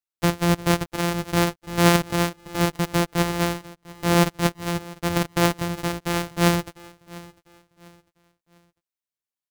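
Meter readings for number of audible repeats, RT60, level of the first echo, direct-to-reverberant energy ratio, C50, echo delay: 2, no reverb audible, −21.0 dB, no reverb audible, no reverb audible, 699 ms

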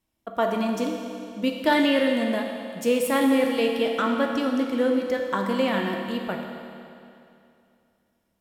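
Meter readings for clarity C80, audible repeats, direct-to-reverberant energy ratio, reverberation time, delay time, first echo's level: 4.0 dB, no echo audible, 1.5 dB, 2.6 s, no echo audible, no echo audible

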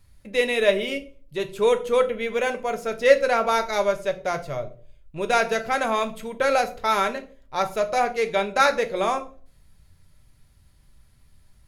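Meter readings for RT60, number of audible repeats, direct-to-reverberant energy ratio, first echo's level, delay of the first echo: 0.40 s, no echo audible, 6.5 dB, no echo audible, no echo audible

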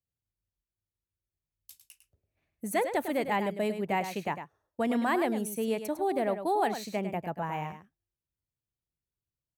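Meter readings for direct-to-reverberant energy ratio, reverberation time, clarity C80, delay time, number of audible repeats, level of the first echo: no reverb audible, no reverb audible, no reverb audible, 103 ms, 1, −9.5 dB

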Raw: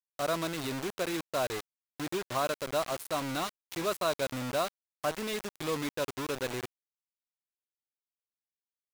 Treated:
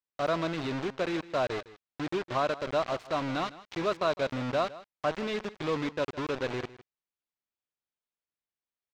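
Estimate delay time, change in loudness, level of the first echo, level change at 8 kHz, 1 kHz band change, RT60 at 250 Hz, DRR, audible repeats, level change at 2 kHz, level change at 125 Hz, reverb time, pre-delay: 158 ms, +2.0 dB, −17.5 dB, −11.0 dB, +2.5 dB, no reverb audible, no reverb audible, 1, +1.5 dB, +3.0 dB, no reverb audible, no reverb audible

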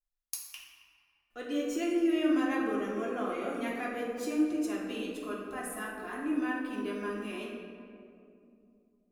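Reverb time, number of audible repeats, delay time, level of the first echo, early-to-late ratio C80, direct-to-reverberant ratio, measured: 2.7 s, no echo audible, no echo audible, no echo audible, 3.0 dB, −4.5 dB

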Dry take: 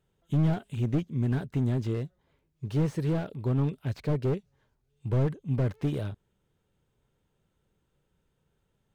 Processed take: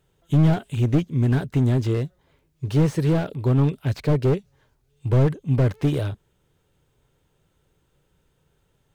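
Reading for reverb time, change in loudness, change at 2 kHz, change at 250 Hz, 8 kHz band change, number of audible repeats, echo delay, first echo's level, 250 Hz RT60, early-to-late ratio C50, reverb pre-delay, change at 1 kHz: no reverb audible, +7.5 dB, +8.5 dB, +7.5 dB, can't be measured, no echo audible, no echo audible, no echo audible, no reverb audible, no reverb audible, no reverb audible, +8.0 dB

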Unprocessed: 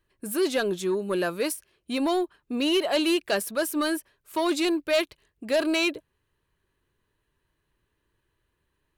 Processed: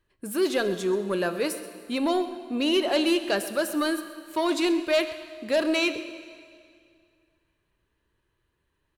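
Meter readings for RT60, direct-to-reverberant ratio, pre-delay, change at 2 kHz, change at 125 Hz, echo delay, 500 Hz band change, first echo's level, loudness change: 2.2 s, 9.5 dB, 7 ms, 0.0 dB, can't be measured, 129 ms, +0.5 dB, −17.0 dB, +0.5 dB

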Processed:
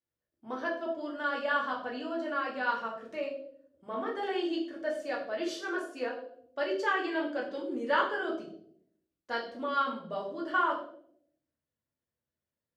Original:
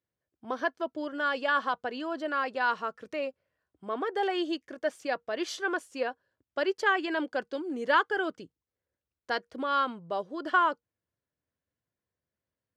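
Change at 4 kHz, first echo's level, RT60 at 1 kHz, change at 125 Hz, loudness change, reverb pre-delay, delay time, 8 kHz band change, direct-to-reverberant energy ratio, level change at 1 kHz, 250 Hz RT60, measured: −3.5 dB, no echo audible, 0.55 s, can't be measured, −2.5 dB, 3 ms, no echo audible, −5.0 dB, −3.5 dB, −3.0 dB, 0.95 s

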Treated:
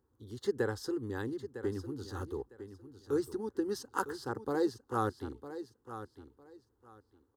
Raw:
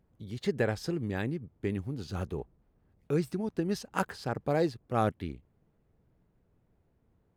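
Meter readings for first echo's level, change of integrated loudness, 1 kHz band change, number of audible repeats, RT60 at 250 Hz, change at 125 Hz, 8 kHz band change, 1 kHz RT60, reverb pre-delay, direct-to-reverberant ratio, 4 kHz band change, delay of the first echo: −12.0 dB, −4.0 dB, −2.5 dB, 2, no reverb audible, −8.5 dB, −1.0 dB, no reverb audible, no reverb audible, no reverb audible, −3.5 dB, 955 ms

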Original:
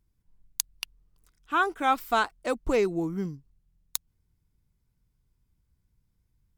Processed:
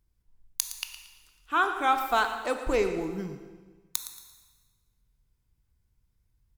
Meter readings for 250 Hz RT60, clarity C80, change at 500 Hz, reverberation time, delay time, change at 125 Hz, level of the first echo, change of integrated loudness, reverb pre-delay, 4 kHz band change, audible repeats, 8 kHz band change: 1.4 s, 8.5 dB, −1.0 dB, 1.3 s, 114 ms, −4.0 dB, −13.0 dB, −0.5 dB, 13 ms, +1.0 dB, 2, +1.0 dB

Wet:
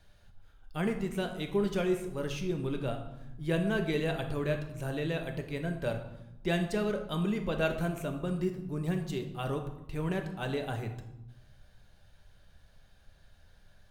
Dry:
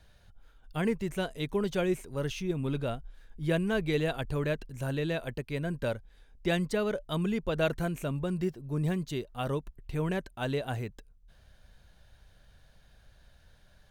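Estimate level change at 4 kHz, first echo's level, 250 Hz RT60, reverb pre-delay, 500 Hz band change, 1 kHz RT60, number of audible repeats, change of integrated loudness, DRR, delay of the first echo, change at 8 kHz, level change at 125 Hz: −1.5 dB, no echo audible, 1.2 s, 3 ms, −1.0 dB, 0.95 s, no echo audible, −1.0 dB, 4.5 dB, no echo audible, −1.5 dB, −1.5 dB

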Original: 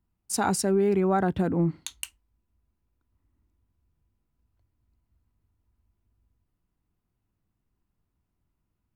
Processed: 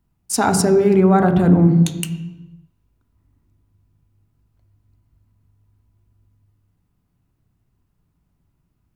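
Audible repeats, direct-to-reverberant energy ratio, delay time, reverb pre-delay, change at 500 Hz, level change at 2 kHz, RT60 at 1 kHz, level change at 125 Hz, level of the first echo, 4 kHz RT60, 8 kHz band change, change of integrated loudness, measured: no echo audible, 7.0 dB, no echo audible, 3 ms, +9.0 dB, +8.0 dB, 1.0 s, +14.0 dB, no echo audible, 0.80 s, +7.5 dB, +9.5 dB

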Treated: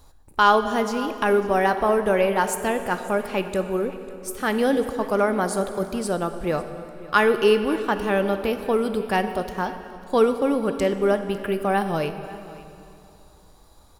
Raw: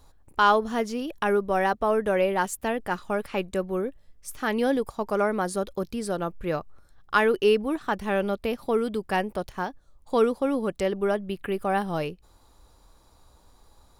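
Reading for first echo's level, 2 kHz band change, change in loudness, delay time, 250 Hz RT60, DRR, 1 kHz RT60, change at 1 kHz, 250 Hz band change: −20.0 dB, +3.5 dB, +3.5 dB, 549 ms, 2.8 s, 8.0 dB, 2.7 s, +3.5 dB, +3.5 dB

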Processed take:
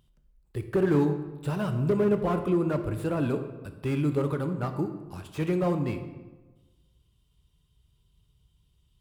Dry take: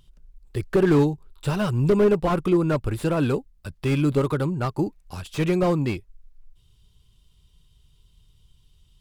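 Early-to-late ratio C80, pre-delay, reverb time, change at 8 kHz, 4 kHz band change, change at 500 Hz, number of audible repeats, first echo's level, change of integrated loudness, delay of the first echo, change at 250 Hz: 11.0 dB, 16 ms, 1.2 s, can't be measured, −9.5 dB, −5.0 dB, no echo audible, no echo audible, −5.0 dB, no echo audible, −4.5 dB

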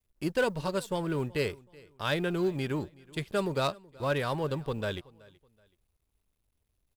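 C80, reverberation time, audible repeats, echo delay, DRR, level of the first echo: no reverb audible, no reverb audible, 2, 376 ms, no reverb audible, −23.5 dB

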